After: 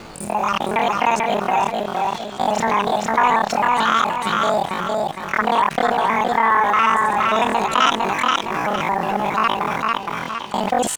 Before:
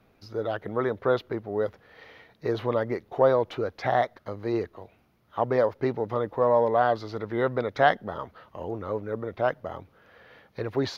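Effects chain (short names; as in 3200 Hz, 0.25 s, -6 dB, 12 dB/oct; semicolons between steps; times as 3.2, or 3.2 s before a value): local time reversal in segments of 45 ms; in parallel at -9.5 dB: bit-crush 7-bit; on the sum: feedback echo 0.458 s, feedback 23%, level -4.5 dB; pitch shift +10.5 st; fast leveller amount 50%; gain +1 dB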